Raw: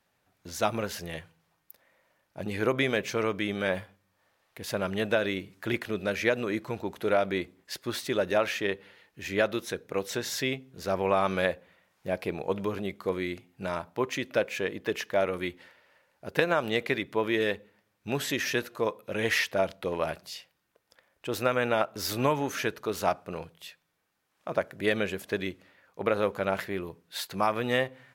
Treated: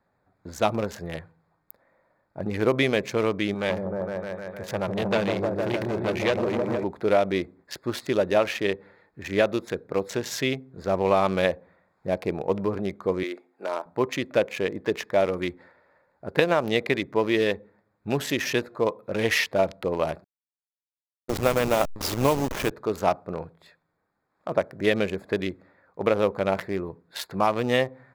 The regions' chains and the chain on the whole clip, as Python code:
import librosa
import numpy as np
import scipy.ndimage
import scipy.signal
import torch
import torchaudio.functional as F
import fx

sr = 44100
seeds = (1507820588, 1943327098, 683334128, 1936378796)

y = fx.chain(x, sr, fx.peak_eq(hz=270.0, db=-12.0, octaves=0.21),
    fx.echo_opening(ms=153, hz=400, octaves=1, feedback_pct=70, wet_db=0),
    fx.transformer_sat(knee_hz=1800.0), at=(3.54, 6.84))
y = fx.chain(y, sr, fx.highpass(hz=330.0, slope=24),
    fx.notch(hz=4200.0, q=24.0), at=(13.23, 13.86))
y = fx.chain(y, sr, fx.delta_hold(step_db=-27.5),
    fx.gate_hold(open_db=-26.0, close_db=-32.0, hold_ms=71.0, range_db=-21, attack_ms=1.4, release_ms=100.0), at=(20.24, 22.71))
y = fx.wiener(y, sr, points=15)
y = fx.dynamic_eq(y, sr, hz=1500.0, q=2.4, threshold_db=-45.0, ratio=4.0, max_db=-5)
y = y * 10.0 ** (5.0 / 20.0)